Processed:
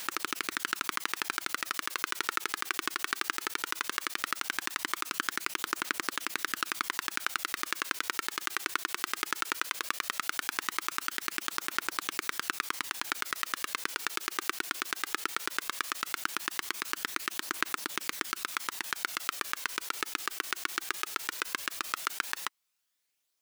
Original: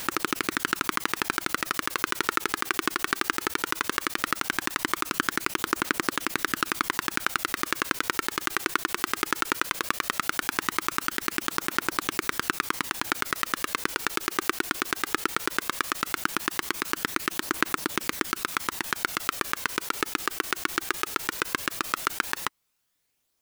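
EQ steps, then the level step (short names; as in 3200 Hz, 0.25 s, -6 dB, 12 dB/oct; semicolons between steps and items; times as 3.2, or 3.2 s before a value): tilt +3 dB/oct; high shelf 7500 Hz -11 dB; -7.0 dB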